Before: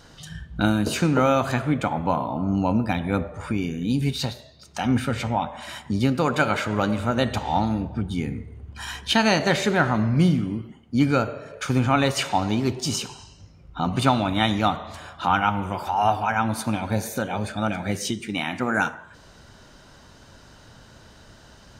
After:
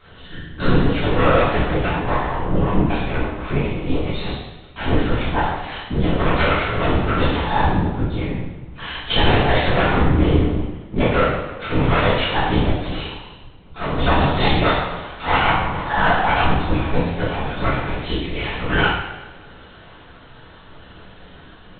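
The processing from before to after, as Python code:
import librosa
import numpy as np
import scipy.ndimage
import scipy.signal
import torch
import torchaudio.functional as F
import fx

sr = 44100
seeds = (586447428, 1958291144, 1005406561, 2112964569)

p1 = fx.lower_of_two(x, sr, delay_ms=8.9)
p2 = fx.level_steps(p1, sr, step_db=13)
p3 = p1 + F.gain(torch.from_numpy(p2), -1.0).numpy()
p4 = fx.lpc_vocoder(p3, sr, seeds[0], excitation='whisper', order=10)
p5 = fx.rev_double_slope(p4, sr, seeds[1], early_s=0.87, late_s=2.2, knee_db=-18, drr_db=-7.5)
y = F.gain(torch.from_numpy(p5), -4.5).numpy()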